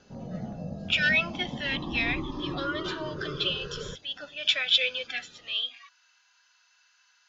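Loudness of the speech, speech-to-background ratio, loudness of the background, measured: −28.0 LKFS, 9.0 dB, −37.0 LKFS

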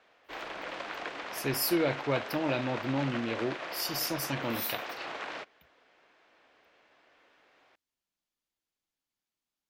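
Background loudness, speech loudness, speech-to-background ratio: −39.0 LKFS, −32.0 LKFS, 7.0 dB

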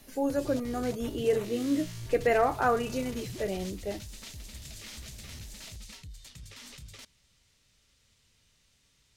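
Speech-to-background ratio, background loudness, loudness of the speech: 13.5 dB, −43.5 LKFS, −30.0 LKFS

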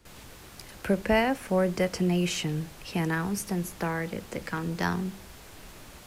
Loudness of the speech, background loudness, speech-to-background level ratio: −29.0 LKFS, −47.5 LKFS, 18.5 dB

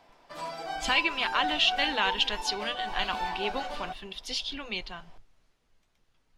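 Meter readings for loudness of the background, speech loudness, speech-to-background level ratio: −35.5 LKFS, −28.5 LKFS, 7.0 dB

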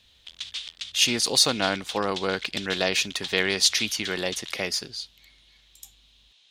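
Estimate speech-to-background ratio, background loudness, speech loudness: 11.5 dB, −35.5 LKFS, −24.0 LKFS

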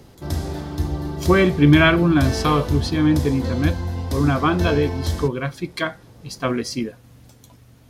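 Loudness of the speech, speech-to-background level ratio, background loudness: −20.0 LKFS, 6.5 dB, −26.5 LKFS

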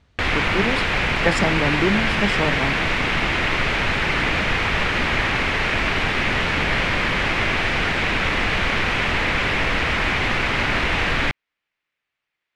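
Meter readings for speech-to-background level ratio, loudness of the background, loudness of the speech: −5.0 dB, −20.0 LKFS, −25.0 LKFS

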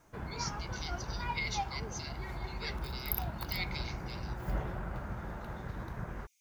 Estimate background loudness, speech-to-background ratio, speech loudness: −40.0 LKFS, −2.0 dB, −42.0 LKFS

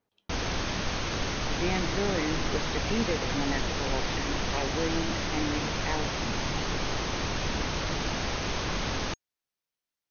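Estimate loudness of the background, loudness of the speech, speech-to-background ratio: −31.0 LKFS, −34.5 LKFS, −3.5 dB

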